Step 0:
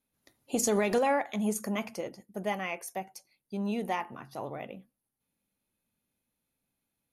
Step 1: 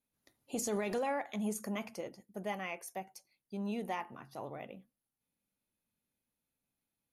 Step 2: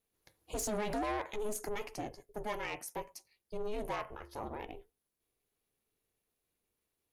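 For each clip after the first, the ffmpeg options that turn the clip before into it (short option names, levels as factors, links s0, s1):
-af "alimiter=limit=0.0794:level=0:latency=1:release=20,volume=0.531"
-af "asoftclip=type=tanh:threshold=0.02,aeval=exprs='val(0)*sin(2*PI*210*n/s)':c=same,volume=2"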